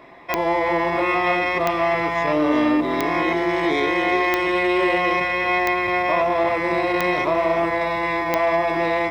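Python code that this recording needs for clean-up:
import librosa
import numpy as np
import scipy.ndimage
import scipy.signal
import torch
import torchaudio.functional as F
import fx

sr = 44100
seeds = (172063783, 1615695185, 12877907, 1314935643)

y = fx.fix_declick_ar(x, sr, threshold=10.0)
y = fx.fix_echo_inverse(y, sr, delay_ms=362, level_db=-11.0)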